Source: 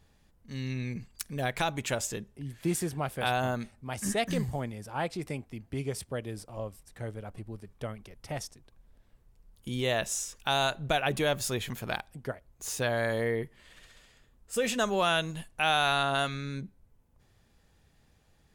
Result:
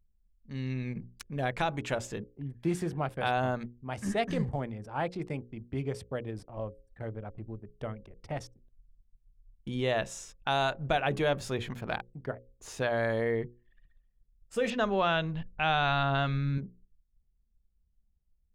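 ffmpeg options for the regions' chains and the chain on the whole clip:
-filter_complex "[0:a]asettb=1/sr,asplit=3[a][b][c];[a]atrim=end=14.704[d];[b]atrim=start=14.7:end=16.58,asetpts=PTS-STARTPTS,afade=t=in:d=0.004:c=qsin,afade=t=out:st=1.876:d=0.004:c=qsin,lowpass=f=5.3k:w=0.5412,lowpass=f=5.3k:w=1.3066,asubboost=boost=5.5:cutoff=210[e];[c]atrim=start=16.576[f];[d][e]acrossfade=d=0.004:c1=hsin:c2=qsin[g];[g][f]acrossfade=d=0.004:c1=qsin:c2=hsin,anlmdn=0.0158,aemphasis=mode=reproduction:type=75fm,bandreject=f=60:t=h:w=6,bandreject=f=120:t=h:w=6,bandreject=f=180:t=h:w=6,bandreject=f=240:t=h:w=6,bandreject=f=300:t=h:w=6,bandreject=f=360:t=h:w=6,bandreject=f=420:t=h:w=6,bandreject=f=480:t=h:w=6,bandreject=f=540:t=h:w=6"

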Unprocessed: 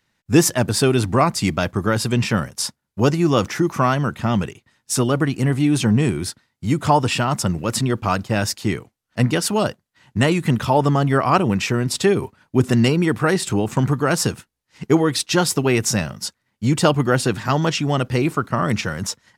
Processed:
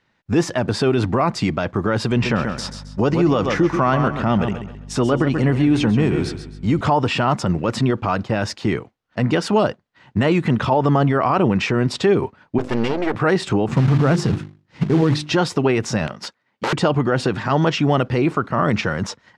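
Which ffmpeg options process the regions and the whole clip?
-filter_complex "[0:a]asettb=1/sr,asplit=3[a][b][c];[a]atrim=end=2.114[d];[b]atrim=start=2.11:end=6.81,asetpts=PTS-STARTPTS,afade=t=in:d=0.004:c=qsin,afade=t=out:st=4.696:d=0.004:c=qsin,aeval=exprs='val(0)+0.0158*(sin(2*PI*50*n/s)+sin(2*PI*2*50*n/s)/2+sin(2*PI*3*50*n/s)/3+sin(2*PI*4*50*n/s)/4+sin(2*PI*5*50*n/s)/5)':c=same,aecho=1:1:133|266|399|532:0.316|0.101|0.0324|0.0104,atrim=end_sample=207270[e];[c]atrim=start=6.806[f];[d][e]acrossfade=d=0.004:c1=hsin:c2=qsin[g];[g][f]acrossfade=d=0.004:c1=qsin:c2=hsin,asettb=1/sr,asplit=3[h][i][j];[h]atrim=end=12.584[k];[i]atrim=start=12.58:end=13.15,asetpts=PTS-STARTPTS,afade=t=in:d=0.004:c=qsin,afade=t=out:st=0.566:d=0.004:c=qsin,equalizer=f=150:w=2.2:g=-14,bandreject=f=50:t=h:w=6,bandreject=f=100:t=h:w=6,bandreject=f=150:t=h:w=6,bandreject=f=200:t=h:w=6,bandreject=f=250:t=h:w=6,bandreject=f=300:t=h:w=6,aeval=exprs='max(val(0),0)':c=same[l];[j]atrim=start=13.146[m];[k][l]acrossfade=d=0.004:c1=hsin:c2=qsin[n];[n][m]acrossfade=d=0.004:c1=qsin:c2=hsin,asettb=1/sr,asplit=3[o][p][q];[o]atrim=end=13.684[r];[p]atrim=start=13.68:end=15.33,asetpts=PTS-STARTPTS,afade=t=in:d=0.004:c=qsin,afade=t=out:st=1.646:d=0.004:c=qsin,equalizer=f=130:w=0.55:g=14,bandreject=f=50:t=h:w=6,bandreject=f=100:t=h:w=6,bandreject=f=150:t=h:w=6,bandreject=f=200:t=h:w=6,bandreject=f=250:t=h:w=6,bandreject=f=300:t=h:w=6,bandreject=f=350:t=h:w=6,bandreject=f=400:t=h:w=6,acrusher=bits=4:mode=log:mix=0:aa=0.000001[s];[q]atrim=start=15.326[t];[r][s]acrossfade=d=0.004:c1=hsin:c2=qsin[u];[u][t]acrossfade=d=0.004:c1=qsin:c2=hsin,asettb=1/sr,asplit=3[v][w][x];[v]atrim=end=16.074[y];[w]atrim=start=16.07:end=16.73,asetpts=PTS-STARTPTS,afade=t=in:d=0.004:c=qsin,afade=t=out:st=0.656:d=0.004:c=qsin,highshelf=f=9.3k:g=-4,aeval=exprs='(mod(8.41*val(0)+1,2)-1)/8.41':c=same,highpass=f=300:p=1[z];[x]atrim=start=16.726[aa];[y][z]acrossfade=d=0.004:c1=hsin:c2=qsin[ab];[ab][aa]acrossfade=d=0.004:c1=qsin:c2=hsin,alimiter=limit=-13dB:level=0:latency=1:release=56,lowpass=4.4k,equalizer=f=610:w=0.34:g=5.5,volume=1dB"

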